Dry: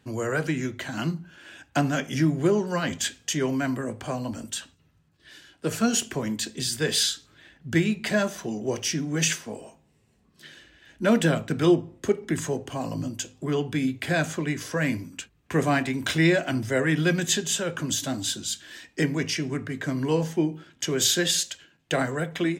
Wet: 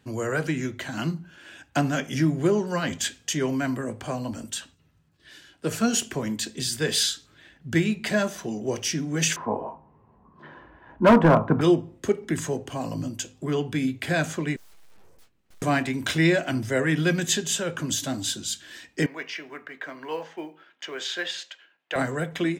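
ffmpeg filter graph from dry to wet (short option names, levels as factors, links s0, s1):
-filter_complex "[0:a]asettb=1/sr,asplit=3[s0][s1][s2];[s0]atrim=end=9.364[s3];[s1]atrim=start=9.36:end=11.61,asetpts=PTS-STARTPTS,afade=t=in:d=0.004:c=qsin,afade=t=out:st=2.246:d=0.004:c=qsin,lowpass=f=1000:t=q:w=6.1,asoftclip=type=hard:threshold=0.158,acontrast=51[s4];[s2]atrim=start=11.606[s5];[s3][s4]acrossfade=d=0.004:c1=hsin:c2=qsin[s6];[s6][s5]acrossfade=d=0.004:c1=qsin:c2=hsin,asettb=1/sr,asplit=3[s7][s8][s9];[s7]atrim=end=14.564[s10];[s8]atrim=start=14.56:end=15.62,asetpts=PTS-STARTPTS,afade=t=in:d=0.004:c=qsin,afade=t=out:st=1.056:d=0.004:c=qsin,aeval=exprs='abs(val(0))':c=same,aeval=exprs='(tanh(112*val(0)+0.65)-tanh(0.65))/112':c=same,asplit=2[s11][s12];[s12]adelay=24,volume=0.266[s13];[s11][s13]amix=inputs=2:normalize=0,atrim=end_sample=46746[s14];[s9]atrim=start=15.616[s15];[s10][s14]acrossfade=d=0.004:c1=hsin:c2=qsin[s16];[s16][s15]acrossfade=d=0.004:c1=qsin:c2=hsin,asettb=1/sr,asplit=3[s17][s18][s19];[s17]atrim=end=19.064[s20];[s18]atrim=start=19.06:end=21.96,asetpts=PTS-STARTPTS,afade=t=in:d=0.004:c=qsin,afade=t=out:st=2.896:d=0.004:c=qsin,highpass=670,lowpass=2700,acrusher=bits=9:mode=log:mix=0:aa=0.000001[s21];[s19]atrim=start=21.956[s22];[s20][s21]acrossfade=d=0.004:c1=hsin:c2=qsin[s23];[s23][s22]acrossfade=d=0.004:c1=qsin:c2=hsin"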